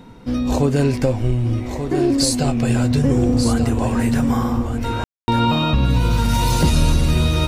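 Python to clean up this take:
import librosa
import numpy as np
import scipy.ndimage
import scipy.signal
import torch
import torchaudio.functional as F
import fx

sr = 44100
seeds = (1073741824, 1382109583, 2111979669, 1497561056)

y = fx.fix_ambience(x, sr, seeds[0], print_start_s=0.0, print_end_s=0.5, start_s=5.04, end_s=5.28)
y = fx.fix_echo_inverse(y, sr, delay_ms=1187, level_db=-8.0)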